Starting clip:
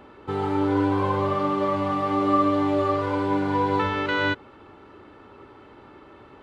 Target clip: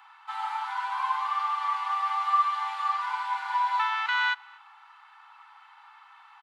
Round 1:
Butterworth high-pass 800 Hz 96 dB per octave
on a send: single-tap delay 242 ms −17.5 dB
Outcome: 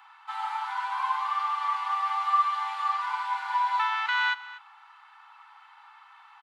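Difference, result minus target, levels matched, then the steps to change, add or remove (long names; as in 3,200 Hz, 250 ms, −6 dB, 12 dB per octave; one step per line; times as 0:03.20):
echo-to-direct +10 dB
change: single-tap delay 242 ms −27.5 dB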